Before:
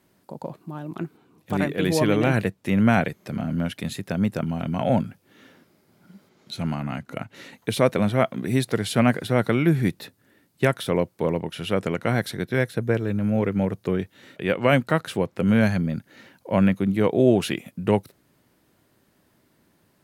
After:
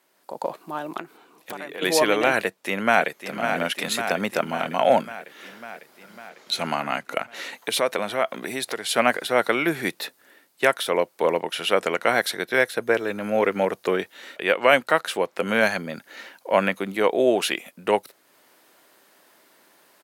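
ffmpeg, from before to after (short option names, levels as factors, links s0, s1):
-filter_complex "[0:a]asplit=3[s0][s1][s2];[s0]afade=t=out:st=0.97:d=0.02[s3];[s1]acompressor=threshold=0.0224:ratio=12:attack=3.2:release=140:knee=1:detection=peak,afade=t=in:st=0.97:d=0.02,afade=t=out:st=1.81:d=0.02[s4];[s2]afade=t=in:st=1.81:d=0.02[s5];[s3][s4][s5]amix=inputs=3:normalize=0,asplit=2[s6][s7];[s7]afade=t=in:st=2.39:d=0.01,afade=t=out:st=3.34:d=0.01,aecho=0:1:550|1100|1650|2200|2750|3300|3850|4400:0.298538|0.19405|0.126132|0.0819861|0.0532909|0.0346391|0.0225154|0.014635[s8];[s6][s8]amix=inputs=2:normalize=0,asettb=1/sr,asplit=3[s9][s10][s11];[s9]atrim=end=7.184[s12];[s10]atrim=start=7.18:end=8.89,asetpts=PTS-STARTPTS,afade=t=in:d=0.004:c=qsin,afade=t=out:st=1.706:d=0.004:c=qsin,acompressor=threshold=0.0282:ratio=2:attack=3.2:release=140:knee=1:detection=peak[s13];[s11]atrim=start=8.886[s14];[s12][s13]acrossfade=d=0.004:c1=hsin:c2=qsin[s15];[s15][s14]acrossfade=d=0.004:c1=qsin:c2=hsin,dynaudnorm=f=120:g=5:m=2.82,highpass=550,volume=1.19"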